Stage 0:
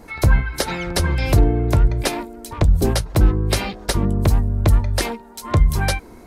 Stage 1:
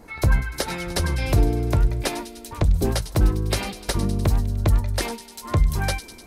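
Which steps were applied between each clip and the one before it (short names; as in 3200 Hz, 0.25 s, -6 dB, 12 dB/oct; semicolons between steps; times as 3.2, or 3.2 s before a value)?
thin delay 0.1 s, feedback 69%, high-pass 3200 Hz, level -10 dB; gain -4 dB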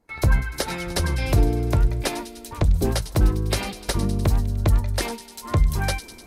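gate with hold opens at -35 dBFS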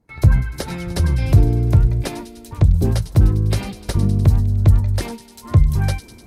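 bell 110 Hz +13 dB 2.4 oct; gain -3.5 dB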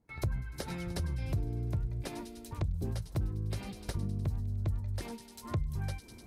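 compressor 2.5:1, threshold -27 dBFS, peak gain reduction 14 dB; gain -8.5 dB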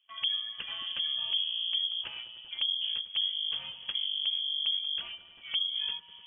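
inverted band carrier 3300 Hz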